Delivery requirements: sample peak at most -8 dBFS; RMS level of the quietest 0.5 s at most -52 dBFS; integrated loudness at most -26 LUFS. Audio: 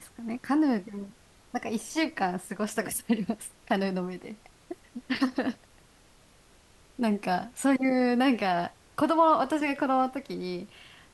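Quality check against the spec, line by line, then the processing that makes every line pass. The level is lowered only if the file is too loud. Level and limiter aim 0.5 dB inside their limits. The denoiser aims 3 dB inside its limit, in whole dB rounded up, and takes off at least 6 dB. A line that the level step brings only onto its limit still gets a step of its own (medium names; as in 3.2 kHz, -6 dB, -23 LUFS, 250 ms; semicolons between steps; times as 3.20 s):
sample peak -11.5 dBFS: pass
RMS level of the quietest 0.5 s -58 dBFS: pass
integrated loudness -28.5 LUFS: pass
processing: none needed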